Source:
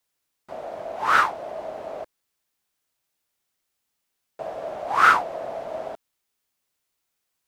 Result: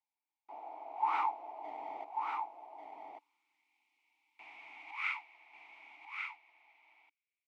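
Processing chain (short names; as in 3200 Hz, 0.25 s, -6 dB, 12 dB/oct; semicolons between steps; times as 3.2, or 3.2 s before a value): high-pass sweep 660 Hz -> 2200 Hz, 3–3.73; 1.64–4.91 power-law curve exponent 0.7; vowel filter u; on a send: echo 1.142 s -5 dB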